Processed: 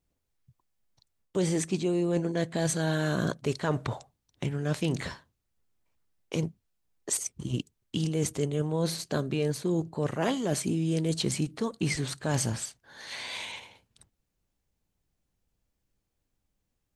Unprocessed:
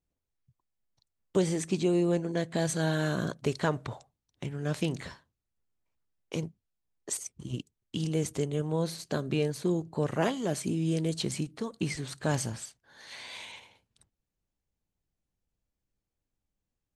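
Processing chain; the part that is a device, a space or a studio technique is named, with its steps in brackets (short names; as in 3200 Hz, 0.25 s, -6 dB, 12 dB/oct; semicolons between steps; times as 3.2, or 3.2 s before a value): compression on the reversed sound (reverse; compressor 6:1, threshold -30 dBFS, peak gain reduction 10 dB; reverse); gain +6 dB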